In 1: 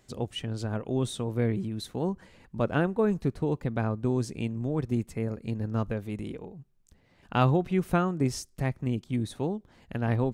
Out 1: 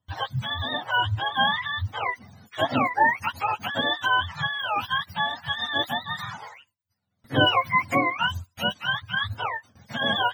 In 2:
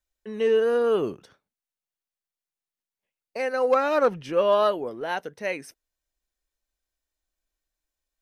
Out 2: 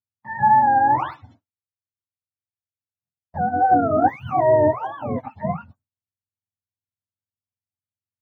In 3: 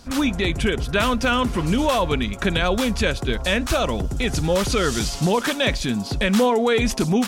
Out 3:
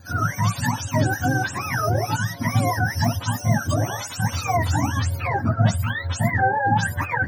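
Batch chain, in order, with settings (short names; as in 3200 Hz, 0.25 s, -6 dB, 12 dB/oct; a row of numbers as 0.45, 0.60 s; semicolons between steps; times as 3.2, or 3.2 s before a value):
spectrum mirrored in octaves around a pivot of 620 Hz; gate with hold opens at -48 dBFS; fifteen-band EQ 160 Hz -7 dB, 400 Hz -11 dB, 2500 Hz -7 dB, 10000 Hz -11 dB; normalise peaks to -6 dBFS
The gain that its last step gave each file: +9.5, +8.5, +3.0 dB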